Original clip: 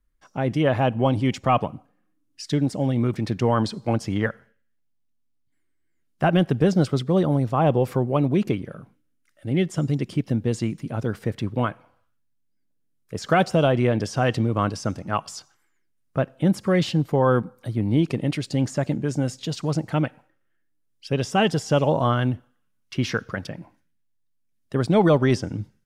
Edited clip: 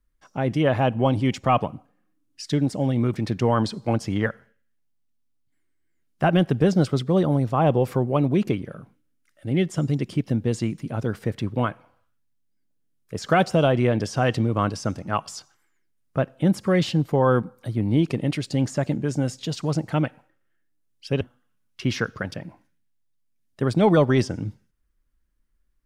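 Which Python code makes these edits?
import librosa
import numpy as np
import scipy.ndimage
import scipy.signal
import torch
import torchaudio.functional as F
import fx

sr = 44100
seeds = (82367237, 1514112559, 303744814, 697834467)

y = fx.edit(x, sr, fx.cut(start_s=21.21, length_s=1.13), tone=tone)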